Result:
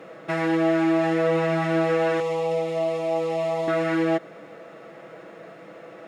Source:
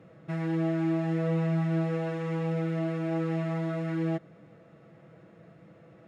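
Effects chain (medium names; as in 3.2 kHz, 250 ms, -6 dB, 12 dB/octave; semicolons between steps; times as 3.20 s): high-pass 400 Hz 12 dB/octave; in parallel at +1 dB: peak limiter -33.5 dBFS, peak gain reduction 9 dB; 2.20–3.68 s: on the sum: static phaser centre 640 Hz, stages 4; trim +9 dB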